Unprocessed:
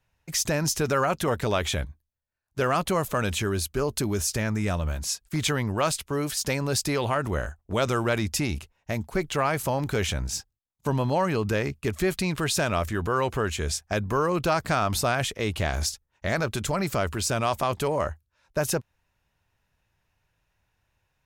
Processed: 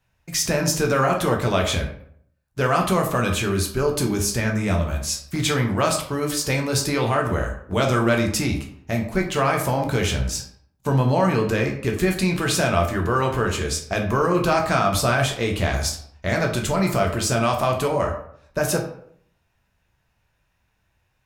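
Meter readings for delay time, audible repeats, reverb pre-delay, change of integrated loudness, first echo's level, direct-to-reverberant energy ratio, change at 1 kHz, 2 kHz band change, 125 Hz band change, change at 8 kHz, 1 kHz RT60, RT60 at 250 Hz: no echo, no echo, 9 ms, +5.0 dB, no echo, 1.0 dB, +4.5 dB, +5.0 dB, +5.5 dB, +3.5 dB, 0.60 s, 0.65 s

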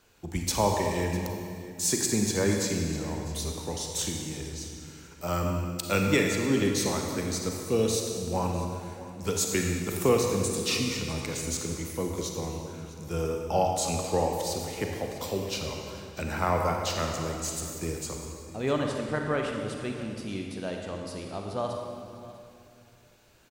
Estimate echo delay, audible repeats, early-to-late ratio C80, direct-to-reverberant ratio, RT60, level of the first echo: 651 ms, 1, 3.0 dB, 1.5 dB, 2.4 s, -18.5 dB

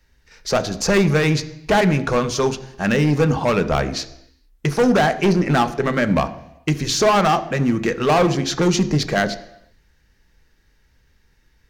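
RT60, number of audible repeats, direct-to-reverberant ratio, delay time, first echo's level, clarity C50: 0.85 s, no echo, 9.5 dB, no echo, no echo, 15.0 dB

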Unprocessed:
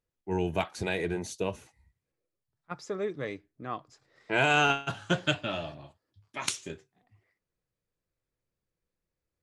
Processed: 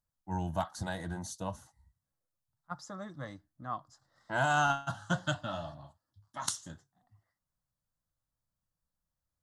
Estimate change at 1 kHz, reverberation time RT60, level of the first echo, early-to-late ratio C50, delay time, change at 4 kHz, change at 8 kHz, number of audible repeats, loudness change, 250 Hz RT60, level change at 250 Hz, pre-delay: -1.5 dB, no reverb, no echo, no reverb, no echo, -8.5 dB, -1.5 dB, no echo, -5.0 dB, no reverb, -5.0 dB, no reverb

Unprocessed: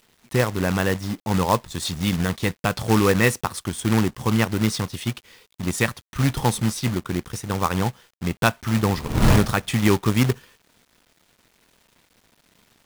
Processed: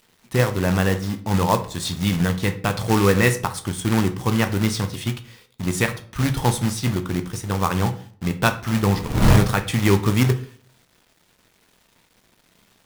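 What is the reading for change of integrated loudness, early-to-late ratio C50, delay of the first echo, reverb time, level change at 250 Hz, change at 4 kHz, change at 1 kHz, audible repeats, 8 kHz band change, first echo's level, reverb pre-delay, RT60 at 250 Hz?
+1.0 dB, 13.5 dB, no echo, 0.50 s, +0.5 dB, +0.5 dB, +1.0 dB, no echo, +0.5 dB, no echo, 7 ms, 0.60 s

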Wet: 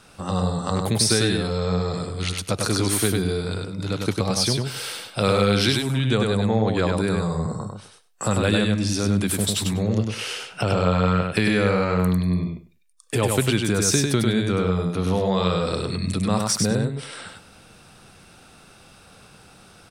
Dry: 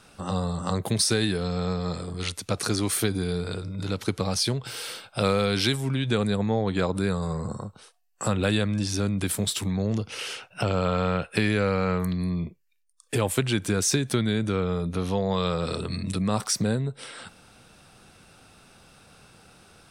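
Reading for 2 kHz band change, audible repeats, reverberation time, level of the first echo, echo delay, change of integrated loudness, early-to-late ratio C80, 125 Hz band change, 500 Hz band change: +4.0 dB, 2, no reverb, -3.5 dB, 99 ms, +4.0 dB, no reverb, +4.5 dB, +4.0 dB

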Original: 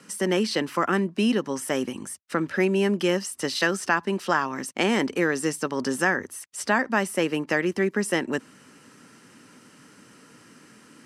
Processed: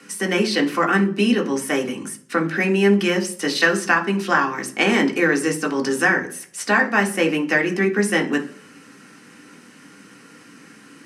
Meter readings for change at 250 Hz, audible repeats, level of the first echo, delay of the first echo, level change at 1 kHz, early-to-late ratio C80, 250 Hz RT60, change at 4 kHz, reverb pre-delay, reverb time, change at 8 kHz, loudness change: +5.5 dB, no echo, no echo, no echo, +4.5 dB, 19.0 dB, 0.75 s, +5.0 dB, 3 ms, 0.50 s, +3.5 dB, +5.5 dB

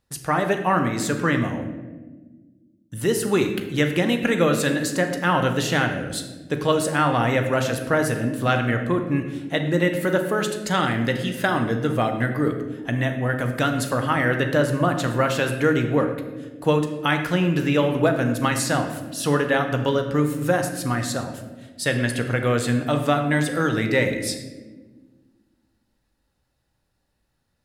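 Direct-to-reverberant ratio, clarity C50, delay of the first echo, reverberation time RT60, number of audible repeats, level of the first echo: 5.0 dB, 7.5 dB, no echo, 1.4 s, no echo, no echo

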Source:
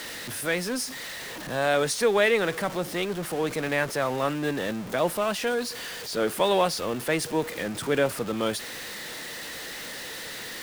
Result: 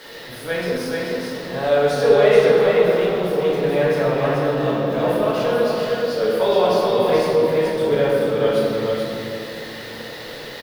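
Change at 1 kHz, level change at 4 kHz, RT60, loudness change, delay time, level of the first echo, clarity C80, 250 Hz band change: +5.5 dB, +2.0 dB, 2.6 s, +8.5 dB, 431 ms, -3.5 dB, -2.5 dB, +6.5 dB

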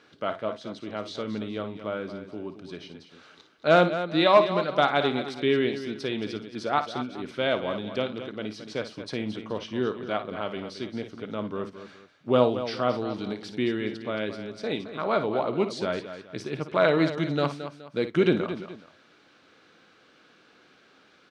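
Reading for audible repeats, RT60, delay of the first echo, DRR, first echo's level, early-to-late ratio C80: 3, no reverb, 56 ms, no reverb, -11.5 dB, no reverb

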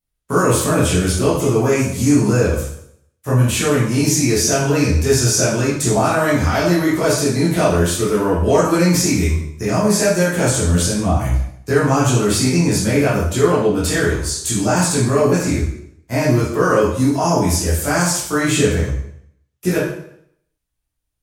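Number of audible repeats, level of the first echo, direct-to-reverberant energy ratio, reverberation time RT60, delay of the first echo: no echo, no echo, -9.5 dB, 0.70 s, no echo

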